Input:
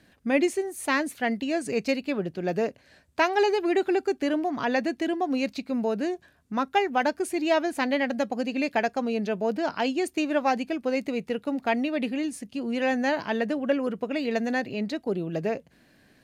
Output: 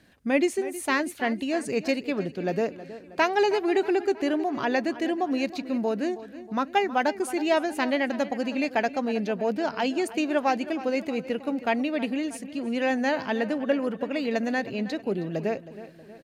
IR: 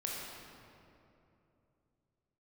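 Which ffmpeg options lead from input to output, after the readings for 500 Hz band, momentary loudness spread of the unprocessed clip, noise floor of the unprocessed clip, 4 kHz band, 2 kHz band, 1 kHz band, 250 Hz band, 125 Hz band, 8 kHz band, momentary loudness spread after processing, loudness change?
0.0 dB, 6 LU, −61 dBFS, 0.0 dB, 0.0 dB, 0.0 dB, 0.0 dB, 0.0 dB, 0.0 dB, 6 LU, 0.0 dB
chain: -filter_complex "[0:a]asplit=2[link_01][link_02];[link_02]adelay=318,lowpass=frequency=4900:poles=1,volume=-15dB,asplit=2[link_03][link_04];[link_04]adelay=318,lowpass=frequency=4900:poles=1,volume=0.54,asplit=2[link_05][link_06];[link_06]adelay=318,lowpass=frequency=4900:poles=1,volume=0.54,asplit=2[link_07][link_08];[link_08]adelay=318,lowpass=frequency=4900:poles=1,volume=0.54,asplit=2[link_09][link_10];[link_10]adelay=318,lowpass=frequency=4900:poles=1,volume=0.54[link_11];[link_01][link_03][link_05][link_07][link_09][link_11]amix=inputs=6:normalize=0"

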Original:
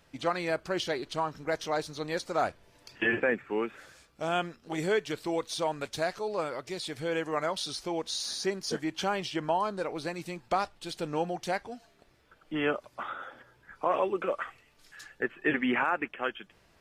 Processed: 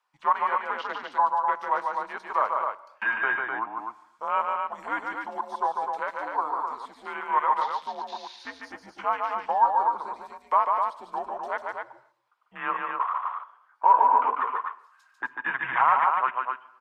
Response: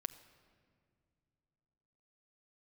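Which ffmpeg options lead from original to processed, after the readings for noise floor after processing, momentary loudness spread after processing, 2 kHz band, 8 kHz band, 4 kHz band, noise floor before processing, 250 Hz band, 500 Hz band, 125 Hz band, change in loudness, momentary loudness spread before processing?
−63 dBFS, 15 LU, +3.5 dB, below −15 dB, −9.5 dB, −64 dBFS, −12.5 dB, −5.0 dB, below −15 dB, +5.5 dB, 9 LU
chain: -filter_complex "[0:a]afwtdn=0.0141,highpass=frequency=1100:width_type=q:width=7.1,afreqshift=-120,acrossover=split=2700[link_01][link_02];[link_02]acompressor=threshold=-51dB:ratio=4:attack=1:release=60[link_03];[link_01][link_03]amix=inputs=2:normalize=0,aecho=1:1:145.8|253.6:0.631|0.562,asplit=2[link_04][link_05];[1:a]atrim=start_sample=2205,afade=type=out:start_time=0.34:duration=0.01,atrim=end_sample=15435[link_06];[link_05][link_06]afir=irnorm=-1:irlink=0,volume=5dB[link_07];[link_04][link_07]amix=inputs=2:normalize=0,volume=-8.5dB"

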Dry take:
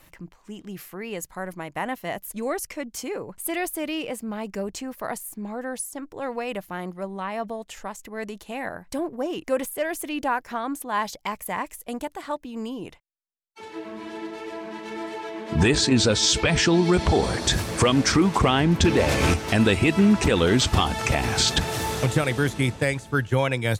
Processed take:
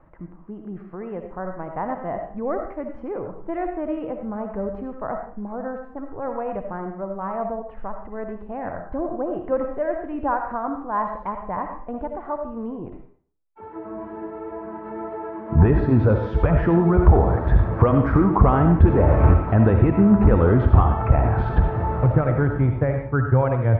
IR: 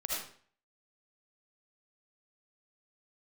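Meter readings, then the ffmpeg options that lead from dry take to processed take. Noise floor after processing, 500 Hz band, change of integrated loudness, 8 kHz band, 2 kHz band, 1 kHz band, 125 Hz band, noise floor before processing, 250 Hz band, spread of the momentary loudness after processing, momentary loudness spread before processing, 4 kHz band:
−42 dBFS, +2.5 dB, +3.0 dB, below −40 dB, −7.5 dB, +2.5 dB, +7.5 dB, −57 dBFS, +2.0 dB, 18 LU, 16 LU, below −25 dB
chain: -filter_complex "[0:a]lowpass=frequency=1300:width=0.5412,lowpass=frequency=1300:width=1.3066,asubboost=boost=3:cutoff=120,asplit=2[link_01][link_02];[1:a]atrim=start_sample=2205,highshelf=frequency=6400:gain=11.5[link_03];[link_02][link_03]afir=irnorm=-1:irlink=0,volume=-4dB[link_04];[link_01][link_04]amix=inputs=2:normalize=0,volume=-1dB"

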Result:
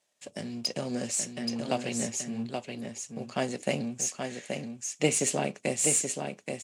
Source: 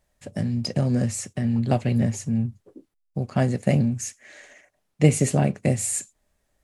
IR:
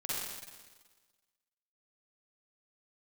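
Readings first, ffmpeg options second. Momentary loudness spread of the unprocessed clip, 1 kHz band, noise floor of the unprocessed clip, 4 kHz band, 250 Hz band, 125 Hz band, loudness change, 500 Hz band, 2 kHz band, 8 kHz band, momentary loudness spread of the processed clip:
10 LU, −3.0 dB, −73 dBFS, +3.0 dB, −9.0 dB, −17.0 dB, −6.5 dB, −3.5 dB, −0.5 dB, +2.0 dB, 13 LU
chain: -filter_complex "[0:a]aeval=exprs='if(lt(val(0),0),0.708*val(0),val(0))':channel_layout=same,highpass=300,lowpass=6700,asplit=2[link_01][link_02];[link_02]aecho=0:1:827:0.531[link_03];[link_01][link_03]amix=inputs=2:normalize=0,aexciter=amount=1.6:drive=8.5:freq=2500,volume=-3dB"

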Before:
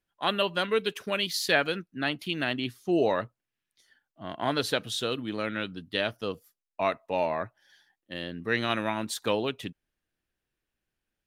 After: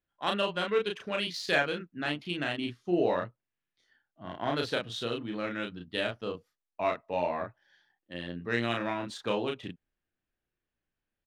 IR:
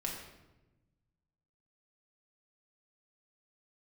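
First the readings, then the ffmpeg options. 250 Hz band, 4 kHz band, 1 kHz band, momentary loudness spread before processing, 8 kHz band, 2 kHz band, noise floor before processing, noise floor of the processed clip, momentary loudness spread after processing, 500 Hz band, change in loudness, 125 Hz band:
−2.0 dB, −4.5 dB, −2.5 dB, 13 LU, −10.5 dB, −2.5 dB, below −85 dBFS, below −85 dBFS, 13 LU, −2.0 dB, −3.0 dB, −2.0 dB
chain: -filter_complex "[0:a]adynamicsmooth=sensitivity=1.5:basefreq=4100,asplit=2[link_01][link_02];[link_02]adelay=34,volume=-3dB[link_03];[link_01][link_03]amix=inputs=2:normalize=0,volume=-4dB"

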